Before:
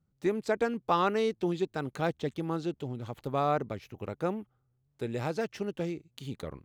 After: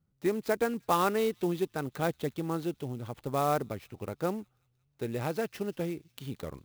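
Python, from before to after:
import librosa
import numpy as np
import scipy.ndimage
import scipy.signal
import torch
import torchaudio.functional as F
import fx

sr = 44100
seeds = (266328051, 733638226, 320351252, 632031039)

p1 = x + fx.echo_wet_highpass(x, sr, ms=182, feedback_pct=57, hz=5300.0, wet_db=-15.5, dry=0)
y = fx.clock_jitter(p1, sr, seeds[0], jitter_ms=0.028)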